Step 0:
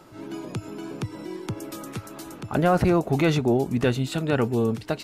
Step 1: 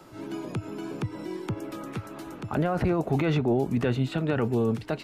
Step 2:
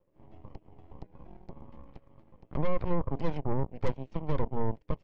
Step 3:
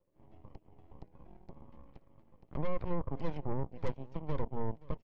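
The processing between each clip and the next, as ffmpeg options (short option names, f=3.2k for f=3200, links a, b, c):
-filter_complex "[0:a]acrossover=split=110|900|3400[a][b][c][d];[d]acompressor=threshold=-54dB:ratio=5[e];[a][b][c][e]amix=inputs=4:normalize=0,alimiter=limit=-16.5dB:level=0:latency=1:release=17"
-filter_complex "[0:a]asplit=3[a][b][c];[a]bandpass=f=530:t=q:w=8,volume=0dB[d];[b]bandpass=f=1.84k:t=q:w=8,volume=-6dB[e];[c]bandpass=f=2.48k:t=q:w=8,volume=-9dB[f];[d][e][f]amix=inputs=3:normalize=0,aeval=exprs='0.0708*(cos(1*acos(clip(val(0)/0.0708,-1,1)))-cos(1*PI/2))+0.0316*(cos(3*acos(clip(val(0)/0.0708,-1,1)))-cos(3*PI/2))+0.0316*(cos(5*acos(clip(val(0)/0.0708,-1,1)))-cos(5*PI/2))+0.0251*(cos(6*acos(clip(val(0)/0.0708,-1,1)))-cos(6*PI/2))+0.0178*(cos(7*acos(clip(val(0)/0.0708,-1,1)))-cos(7*PI/2))':c=same,tiltshelf=f=720:g=10"
-af "aecho=1:1:526:0.0841,volume=-5.5dB"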